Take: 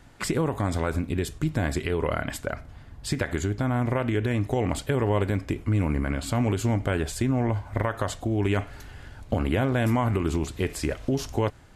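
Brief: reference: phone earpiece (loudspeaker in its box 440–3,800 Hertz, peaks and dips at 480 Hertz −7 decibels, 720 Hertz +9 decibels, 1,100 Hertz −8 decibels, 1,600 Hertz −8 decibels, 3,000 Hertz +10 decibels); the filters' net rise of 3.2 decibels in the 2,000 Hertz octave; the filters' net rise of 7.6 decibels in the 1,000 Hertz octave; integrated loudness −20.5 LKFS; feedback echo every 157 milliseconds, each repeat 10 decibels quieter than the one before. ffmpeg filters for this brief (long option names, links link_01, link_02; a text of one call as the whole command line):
ffmpeg -i in.wav -af "highpass=440,equalizer=frequency=480:width_type=q:width=4:gain=-7,equalizer=frequency=720:width_type=q:width=4:gain=9,equalizer=frequency=1100:width_type=q:width=4:gain=-8,equalizer=frequency=1600:width_type=q:width=4:gain=-8,equalizer=frequency=3000:width_type=q:width=4:gain=10,lowpass=frequency=3800:width=0.5412,lowpass=frequency=3800:width=1.3066,equalizer=frequency=1000:width_type=o:gain=7.5,equalizer=frequency=2000:width_type=o:gain=5,aecho=1:1:157|314|471|628:0.316|0.101|0.0324|0.0104,volume=7.5dB" out.wav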